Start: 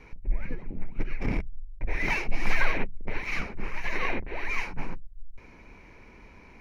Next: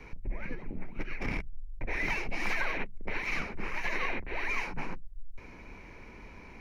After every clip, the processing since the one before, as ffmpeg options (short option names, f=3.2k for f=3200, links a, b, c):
-filter_complex "[0:a]acrossover=split=170|960[a][b][c];[a]acompressor=threshold=-34dB:ratio=4[d];[b]acompressor=threshold=-42dB:ratio=4[e];[c]acompressor=threshold=-34dB:ratio=4[f];[d][e][f]amix=inputs=3:normalize=0,volume=2dB"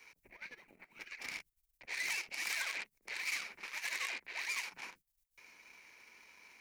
-af "aeval=exprs='0.126*(cos(1*acos(clip(val(0)/0.126,-1,1)))-cos(1*PI/2))+0.01*(cos(8*acos(clip(val(0)/0.126,-1,1)))-cos(8*PI/2))':c=same,aderivative,volume=5dB"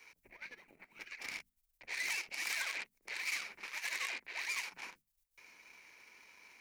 -af "bandreject=f=50:t=h:w=6,bandreject=f=100:t=h:w=6,bandreject=f=150:t=h:w=6,bandreject=f=200:t=h:w=6,bandreject=f=250:t=h:w=6"